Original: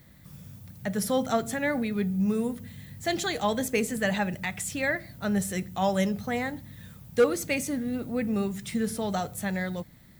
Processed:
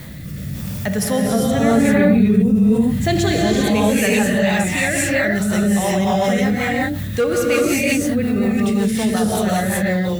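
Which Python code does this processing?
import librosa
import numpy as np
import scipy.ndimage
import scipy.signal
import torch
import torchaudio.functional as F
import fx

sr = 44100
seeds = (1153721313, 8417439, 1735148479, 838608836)

y = fx.low_shelf(x, sr, hz=330.0, db=10.5, at=(1.22, 3.61))
y = fx.rev_gated(y, sr, seeds[0], gate_ms=420, shape='rising', drr_db=-5.5)
y = fx.rotary_switch(y, sr, hz=0.9, then_hz=5.5, switch_at_s=4.02)
y = fx.peak_eq(y, sr, hz=2700.0, db=3.0, octaves=0.32)
y = fx.env_flatten(y, sr, amount_pct=50)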